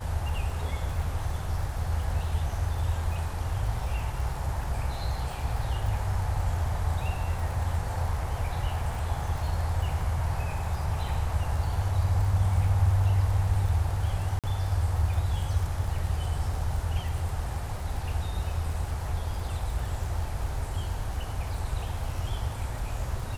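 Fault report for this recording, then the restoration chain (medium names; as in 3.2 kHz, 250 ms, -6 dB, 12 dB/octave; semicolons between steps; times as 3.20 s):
crackle 50 per s -35 dBFS
14.39–14.44 s: dropout 47 ms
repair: de-click; interpolate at 14.39 s, 47 ms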